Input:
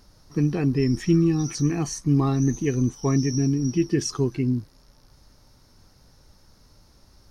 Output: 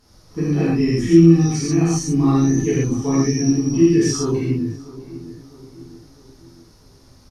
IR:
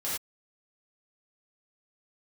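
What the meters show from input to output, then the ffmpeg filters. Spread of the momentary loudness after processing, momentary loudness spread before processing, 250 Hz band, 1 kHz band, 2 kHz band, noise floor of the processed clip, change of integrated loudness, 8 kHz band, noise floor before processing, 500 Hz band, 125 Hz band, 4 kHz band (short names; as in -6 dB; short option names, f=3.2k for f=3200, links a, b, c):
21 LU, 6 LU, +7.0 dB, +5.0 dB, +5.5 dB, -50 dBFS, +6.5 dB, +6.0 dB, -57 dBFS, +7.5 dB, +4.5 dB, +5.5 dB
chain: -filter_complex "[0:a]asplit=2[a][b];[b]adelay=654,lowpass=f=1.7k:p=1,volume=-16.5dB,asplit=2[c][d];[d]adelay=654,lowpass=f=1.7k:p=1,volume=0.5,asplit=2[e][f];[f]adelay=654,lowpass=f=1.7k:p=1,volume=0.5,asplit=2[g][h];[h]adelay=654,lowpass=f=1.7k:p=1,volume=0.5[i];[a][c][e][g][i]amix=inputs=5:normalize=0[j];[1:a]atrim=start_sample=2205,atrim=end_sample=3969,asetrate=26460,aresample=44100[k];[j][k]afir=irnorm=-1:irlink=0,volume=-3dB"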